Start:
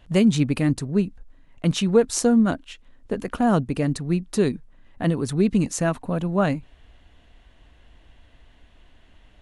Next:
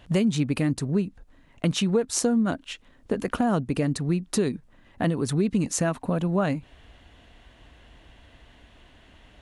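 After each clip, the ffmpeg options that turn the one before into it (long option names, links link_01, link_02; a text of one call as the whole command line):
ffmpeg -i in.wav -af "highpass=frequency=65:poles=1,acompressor=threshold=-27dB:ratio=3,volume=4.5dB" out.wav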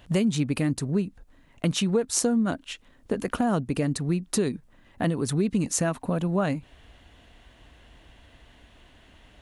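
ffmpeg -i in.wav -af "highshelf=frequency=9000:gain=6.5,volume=-1dB" out.wav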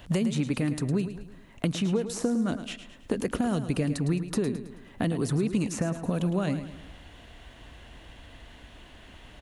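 ffmpeg -i in.wav -filter_complex "[0:a]acrossover=split=520|2200[link_01][link_02][link_03];[link_01]acompressor=threshold=-30dB:ratio=4[link_04];[link_02]acompressor=threshold=-44dB:ratio=4[link_05];[link_03]acompressor=threshold=-45dB:ratio=4[link_06];[link_04][link_05][link_06]amix=inputs=3:normalize=0,aecho=1:1:108|216|324|432|540:0.282|0.13|0.0596|0.0274|0.0126,volume=4.5dB" out.wav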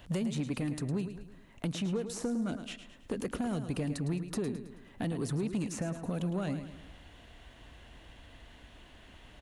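ffmpeg -i in.wav -af "asoftclip=type=tanh:threshold=-19.5dB,volume=-5dB" out.wav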